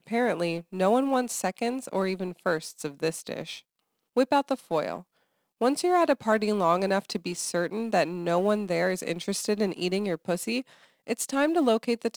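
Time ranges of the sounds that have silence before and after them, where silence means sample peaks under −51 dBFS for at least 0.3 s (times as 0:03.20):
0:04.16–0:05.03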